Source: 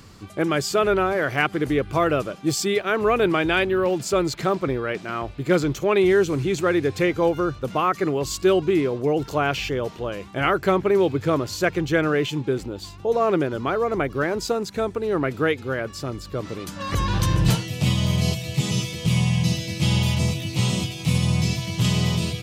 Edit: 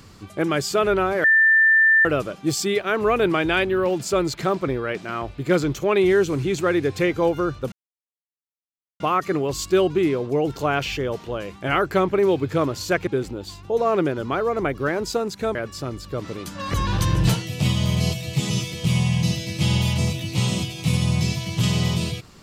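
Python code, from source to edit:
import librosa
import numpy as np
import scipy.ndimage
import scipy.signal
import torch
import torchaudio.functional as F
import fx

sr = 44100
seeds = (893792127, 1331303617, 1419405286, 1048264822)

y = fx.edit(x, sr, fx.bleep(start_s=1.24, length_s=0.81, hz=1780.0, db=-12.0),
    fx.insert_silence(at_s=7.72, length_s=1.28),
    fx.cut(start_s=11.79, length_s=0.63),
    fx.cut(start_s=14.9, length_s=0.86), tone=tone)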